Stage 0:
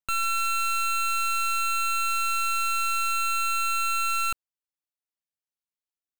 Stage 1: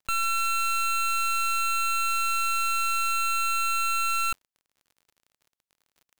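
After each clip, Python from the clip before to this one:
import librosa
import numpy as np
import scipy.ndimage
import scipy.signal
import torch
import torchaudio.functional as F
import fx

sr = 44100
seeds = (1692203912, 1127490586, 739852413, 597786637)

y = fx.dmg_crackle(x, sr, seeds[0], per_s=47.0, level_db=-46.0)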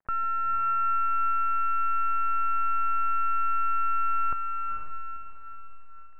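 y = scipy.signal.sosfilt(scipy.signal.ellip(4, 1.0, 70, 1800.0, 'lowpass', fs=sr, output='sos'), x)
y = fx.echo_diffused(y, sr, ms=481, feedback_pct=46, wet_db=-4.5)
y = y * 10.0 ** (1.5 / 20.0)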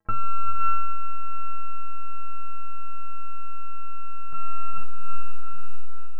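y = fx.low_shelf(x, sr, hz=420.0, db=11.5)
y = fx.over_compress(y, sr, threshold_db=-21.0, ratio=-1.0)
y = fx.stiff_resonator(y, sr, f0_hz=97.0, decay_s=0.36, stiffness=0.03)
y = y * 10.0 ** (7.0 / 20.0)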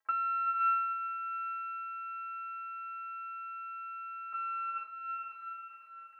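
y = scipy.signal.sosfilt(scipy.signal.butter(2, 1300.0, 'highpass', fs=sr, output='sos'), x)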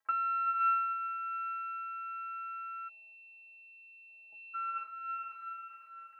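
y = fx.spec_erase(x, sr, start_s=2.89, length_s=1.65, low_hz=870.0, high_hz=2500.0)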